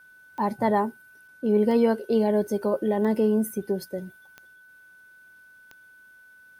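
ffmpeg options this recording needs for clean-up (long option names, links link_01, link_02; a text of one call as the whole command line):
ffmpeg -i in.wav -af "adeclick=threshold=4,bandreject=frequency=1500:width=30" out.wav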